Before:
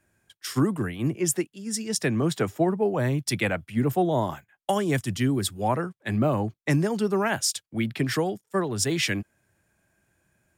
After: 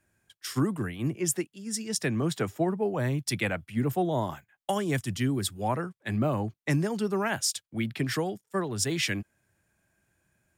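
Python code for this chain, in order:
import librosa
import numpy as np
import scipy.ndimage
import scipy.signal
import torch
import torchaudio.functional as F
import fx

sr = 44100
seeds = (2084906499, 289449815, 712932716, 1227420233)

y = fx.peak_eq(x, sr, hz=490.0, db=-2.0, octaves=2.4)
y = y * librosa.db_to_amplitude(-2.5)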